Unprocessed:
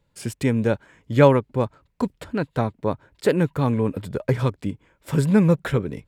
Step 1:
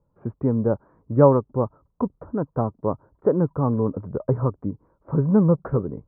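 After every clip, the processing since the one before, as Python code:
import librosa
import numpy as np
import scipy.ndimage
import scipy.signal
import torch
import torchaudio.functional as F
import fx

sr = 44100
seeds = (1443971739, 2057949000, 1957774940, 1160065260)

y = scipy.signal.sosfilt(scipy.signal.ellip(4, 1.0, 80, 1200.0, 'lowpass', fs=sr, output='sos'), x)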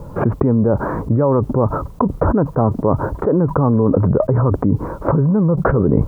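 y = fx.env_flatten(x, sr, amount_pct=100)
y = F.gain(torch.from_numpy(y), -3.5).numpy()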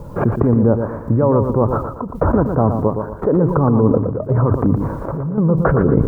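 y = fx.chopper(x, sr, hz=0.93, depth_pct=65, duty_pct=70)
y = fx.echo_feedback(y, sr, ms=117, feedback_pct=38, wet_db=-7.0)
y = fx.end_taper(y, sr, db_per_s=190.0)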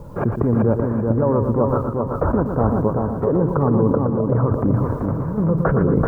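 y = fx.echo_feedback(x, sr, ms=383, feedback_pct=36, wet_db=-4.0)
y = F.gain(torch.from_numpy(y), -4.0).numpy()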